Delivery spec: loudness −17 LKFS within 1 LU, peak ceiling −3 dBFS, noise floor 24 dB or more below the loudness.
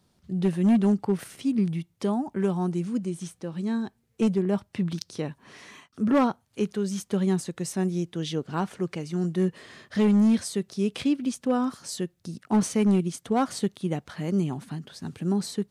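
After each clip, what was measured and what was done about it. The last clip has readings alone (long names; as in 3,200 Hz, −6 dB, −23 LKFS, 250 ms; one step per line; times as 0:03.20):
share of clipped samples 0.9%; peaks flattened at −16.0 dBFS; integrated loudness −27.0 LKFS; sample peak −16.0 dBFS; target loudness −17.0 LKFS
→ clipped peaks rebuilt −16 dBFS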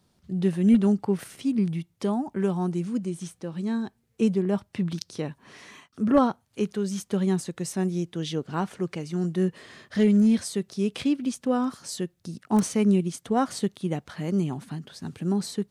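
share of clipped samples 0.0%; integrated loudness −26.5 LKFS; sample peak −7.5 dBFS; target loudness −17.0 LKFS
→ level +9.5 dB
brickwall limiter −3 dBFS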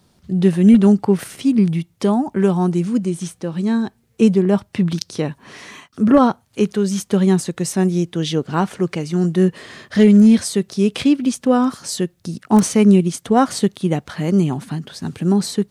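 integrated loudness −17.5 LKFS; sample peak −3.0 dBFS; background noise floor −59 dBFS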